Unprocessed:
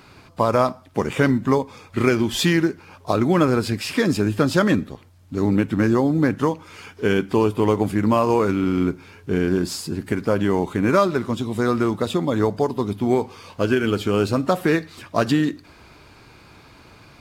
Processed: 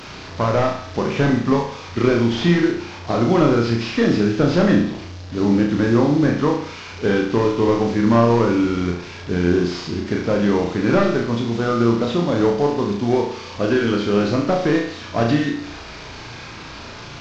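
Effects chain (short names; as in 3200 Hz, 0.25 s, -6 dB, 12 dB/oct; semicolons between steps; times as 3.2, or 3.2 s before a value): delta modulation 32 kbps, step -31.5 dBFS; flutter echo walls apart 5.9 m, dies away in 0.57 s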